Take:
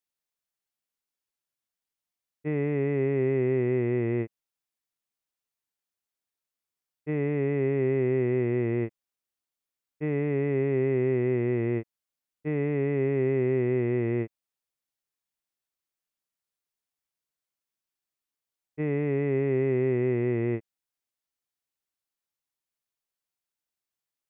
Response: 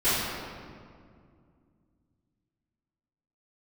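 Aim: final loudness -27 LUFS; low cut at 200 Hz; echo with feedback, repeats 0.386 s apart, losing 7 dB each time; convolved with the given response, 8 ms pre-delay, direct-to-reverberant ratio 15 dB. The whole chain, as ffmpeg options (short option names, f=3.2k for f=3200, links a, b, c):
-filter_complex "[0:a]highpass=200,aecho=1:1:386|772|1158|1544|1930:0.447|0.201|0.0905|0.0407|0.0183,asplit=2[a][b];[1:a]atrim=start_sample=2205,adelay=8[c];[b][c]afir=irnorm=-1:irlink=0,volume=-30.5dB[d];[a][d]amix=inputs=2:normalize=0,volume=1dB"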